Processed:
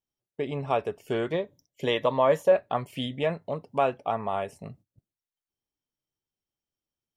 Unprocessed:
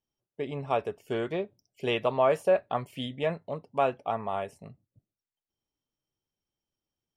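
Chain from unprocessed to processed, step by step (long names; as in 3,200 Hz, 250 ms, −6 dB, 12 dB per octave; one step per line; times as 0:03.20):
noise gate −58 dBFS, range −10 dB
0:01.33–0:02.52: EQ curve with evenly spaced ripples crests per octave 1.1, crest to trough 8 dB
in parallel at −0.5 dB: downward compressor, threshold −37 dBFS, peak gain reduction 19.5 dB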